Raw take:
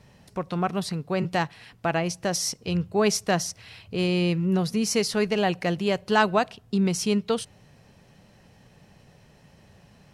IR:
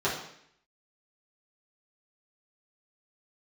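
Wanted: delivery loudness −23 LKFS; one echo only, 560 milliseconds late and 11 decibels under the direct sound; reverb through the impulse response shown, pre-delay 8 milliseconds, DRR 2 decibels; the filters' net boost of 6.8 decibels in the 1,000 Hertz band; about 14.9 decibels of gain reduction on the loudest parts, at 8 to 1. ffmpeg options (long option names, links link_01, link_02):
-filter_complex "[0:a]equalizer=frequency=1000:width_type=o:gain=9,acompressor=threshold=-26dB:ratio=8,aecho=1:1:560:0.282,asplit=2[link_01][link_02];[1:a]atrim=start_sample=2205,adelay=8[link_03];[link_02][link_03]afir=irnorm=-1:irlink=0,volume=-13.5dB[link_04];[link_01][link_04]amix=inputs=2:normalize=0,volume=5.5dB"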